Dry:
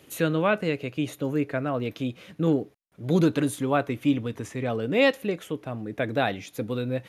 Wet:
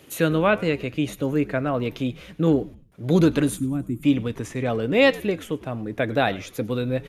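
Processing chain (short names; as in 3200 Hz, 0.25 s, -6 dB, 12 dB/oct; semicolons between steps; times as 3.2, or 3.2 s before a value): spectral gain 3.57–4.04, 380–6700 Hz -22 dB; frequency-shifting echo 0.1 s, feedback 42%, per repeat -98 Hz, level -20.5 dB; gain +3.5 dB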